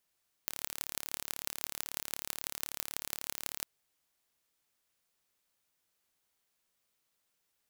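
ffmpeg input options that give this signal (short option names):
-f lavfi -i "aevalsrc='0.501*eq(mod(n,1218),0)*(0.5+0.5*eq(mod(n,7308),0))':d=3.16:s=44100"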